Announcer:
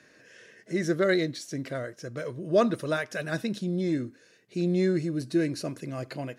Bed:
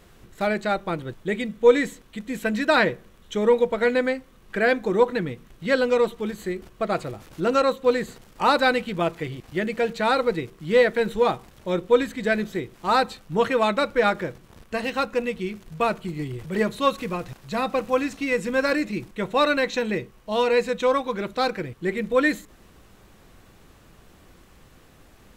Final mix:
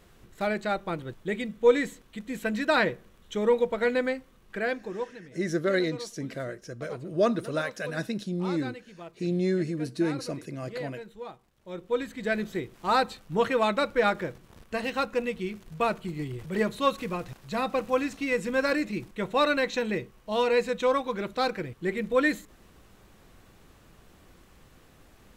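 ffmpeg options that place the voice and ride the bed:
-filter_complex "[0:a]adelay=4650,volume=-1.5dB[a];[1:a]volume=12dB,afade=t=out:st=4.23:d=0.94:silence=0.16788,afade=t=in:st=11.56:d=0.98:silence=0.149624[b];[a][b]amix=inputs=2:normalize=0"

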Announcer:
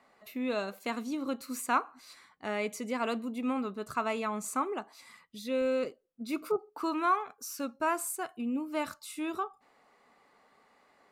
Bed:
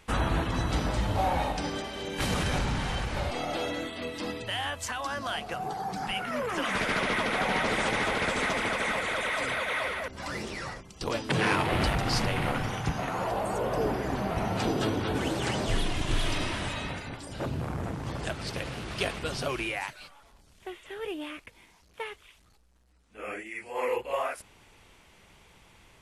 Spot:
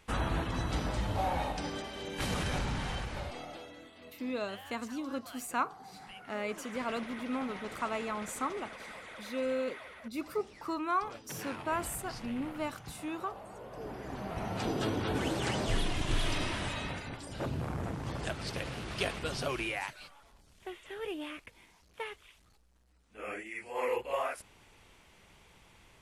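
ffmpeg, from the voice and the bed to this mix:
-filter_complex "[0:a]adelay=3850,volume=-3.5dB[a];[1:a]volume=9.5dB,afade=t=out:st=2.9:d=0.77:silence=0.237137,afade=t=in:st=13.71:d=1.39:silence=0.188365[b];[a][b]amix=inputs=2:normalize=0"

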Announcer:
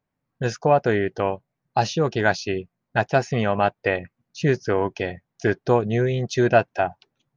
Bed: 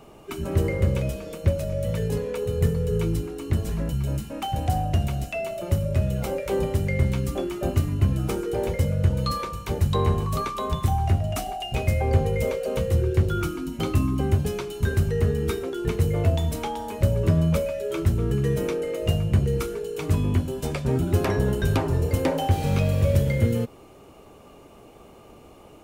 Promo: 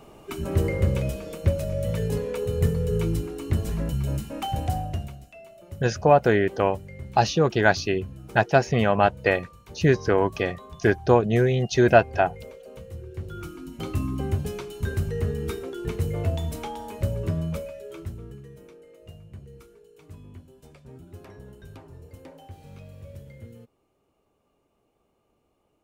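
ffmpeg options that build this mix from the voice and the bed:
-filter_complex "[0:a]adelay=5400,volume=1dB[a];[1:a]volume=12dB,afade=t=out:st=4.52:d=0.68:silence=0.149624,afade=t=in:st=13.09:d=1.02:silence=0.237137,afade=t=out:st=16.9:d=1.58:silence=0.125893[b];[a][b]amix=inputs=2:normalize=0"

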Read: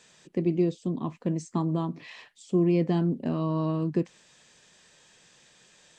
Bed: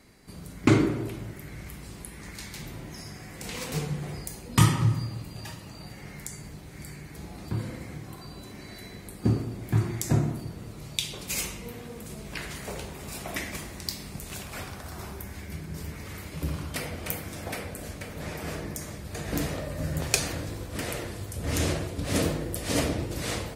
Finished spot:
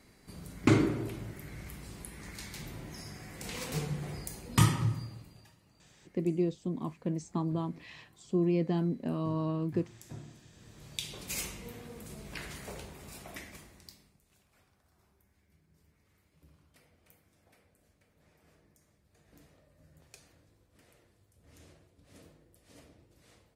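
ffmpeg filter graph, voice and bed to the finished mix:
-filter_complex "[0:a]adelay=5800,volume=-5dB[a];[1:a]volume=12dB,afade=t=out:st=4.57:d=0.93:silence=0.125893,afade=t=in:st=10.48:d=0.71:silence=0.158489,afade=t=out:st=12.46:d=1.71:silence=0.0562341[b];[a][b]amix=inputs=2:normalize=0"

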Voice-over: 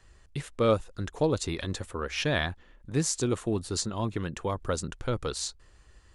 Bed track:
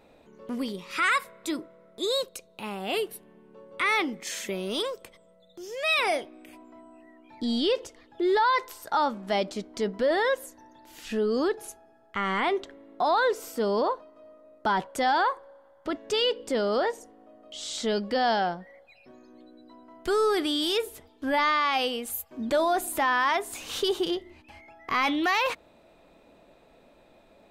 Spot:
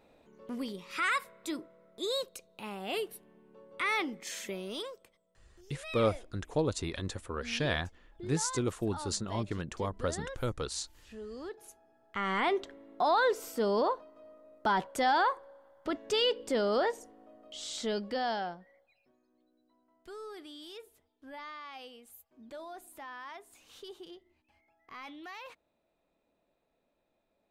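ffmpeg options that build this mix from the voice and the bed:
-filter_complex "[0:a]adelay=5350,volume=-4dB[a];[1:a]volume=9dB,afade=t=out:st=4.44:d=0.76:silence=0.251189,afade=t=in:st=11.42:d=1.03:silence=0.177828,afade=t=out:st=17.27:d=1.9:silence=0.125893[b];[a][b]amix=inputs=2:normalize=0"

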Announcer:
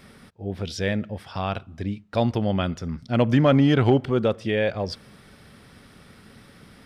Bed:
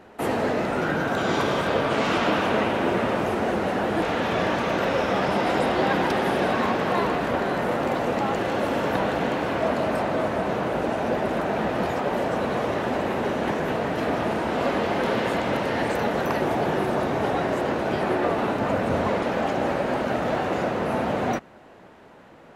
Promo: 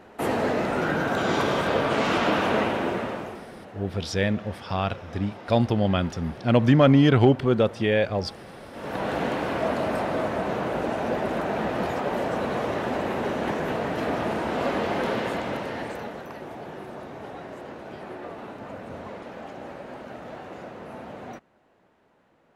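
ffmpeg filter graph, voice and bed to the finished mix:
-filter_complex "[0:a]adelay=3350,volume=1dB[a];[1:a]volume=17dB,afade=t=out:st=2.58:d=0.88:silence=0.112202,afade=t=in:st=8.72:d=0.44:silence=0.133352,afade=t=out:st=14.99:d=1.27:silence=0.237137[b];[a][b]amix=inputs=2:normalize=0"

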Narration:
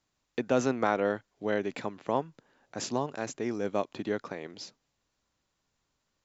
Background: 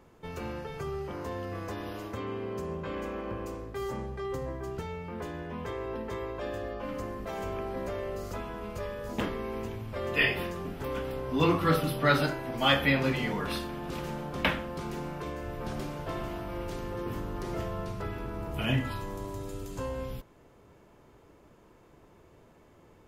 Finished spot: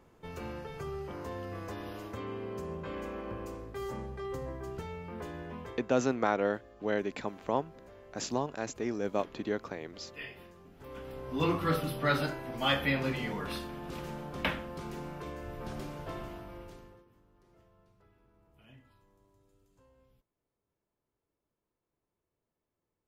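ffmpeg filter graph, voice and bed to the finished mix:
-filter_complex "[0:a]adelay=5400,volume=-1.5dB[a];[1:a]volume=10.5dB,afade=t=out:st=5.49:d=0.41:silence=0.177828,afade=t=in:st=10.71:d=0.74:silence=0.199526,afade=t=out:st=16.06:d=1:silence=0.0530884[b];[a][b]amix=inputs=2:normalize=0"

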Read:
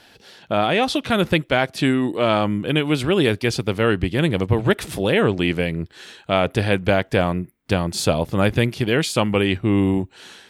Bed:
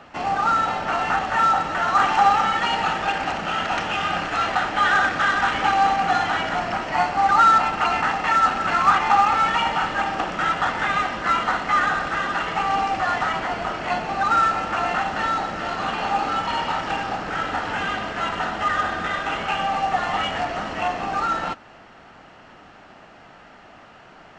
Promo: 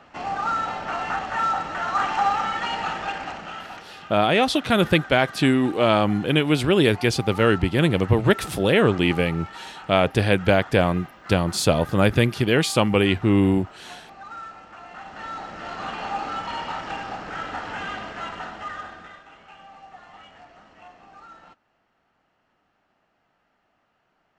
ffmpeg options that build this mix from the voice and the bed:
-filter_complex "[0:a]adelay=3600,volume=0dB[a];[1:a]volume=8.5dB,afade=t=out:st=3:d=0.88:silence=0.188365,afade=t=in:st=14.89:d=0.95:silence=0.211349,afade=t=out:st=18.01:d=1.24:silence=0.141254[b];[a][b]amix=inputs=2:normalize=0"

